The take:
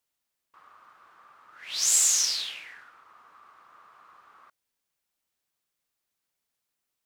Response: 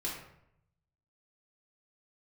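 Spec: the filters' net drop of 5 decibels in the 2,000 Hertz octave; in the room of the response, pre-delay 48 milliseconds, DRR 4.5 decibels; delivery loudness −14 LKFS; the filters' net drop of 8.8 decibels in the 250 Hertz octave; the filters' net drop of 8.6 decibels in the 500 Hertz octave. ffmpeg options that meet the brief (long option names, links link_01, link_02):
-filter_complex "[0:a]equalizer=frequency=250:width_type=o:gain=-8.5,equalizer=frequency=500:width_type=o:gain=-9,equalizer=frequency=2000:width_type=o:gain=-6,asplit=2[link_01][link_02];[1:a]atrim=start_sample=2205,adelay=48[link_03];[link_02][link_03]afir=irnorm=-1:irlink=0,volume=-7.5dB[link_04];[link_01][link_04]amix=inputs=2:normalize=0,volume=8dB"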